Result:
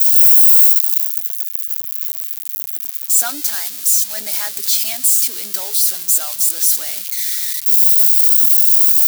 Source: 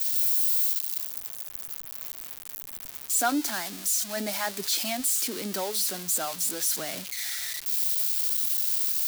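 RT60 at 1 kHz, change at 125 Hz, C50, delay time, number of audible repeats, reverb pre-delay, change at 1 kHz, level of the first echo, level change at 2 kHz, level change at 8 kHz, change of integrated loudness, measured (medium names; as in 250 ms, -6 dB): no reverb, under -10 dB, no reverb, no echo, no echo, no reverb, -1.5 dB, no echo, +2.5 dB, +11.0 dB, +14.0 dB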